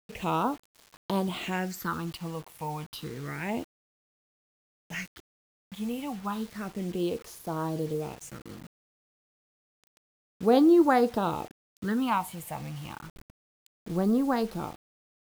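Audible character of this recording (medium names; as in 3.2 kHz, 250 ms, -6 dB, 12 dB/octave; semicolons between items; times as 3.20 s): phasing stages 6, 0.3 Hz, lowest notch 380–2500 Hz; a quantiser's noise floor 8-bit, dither none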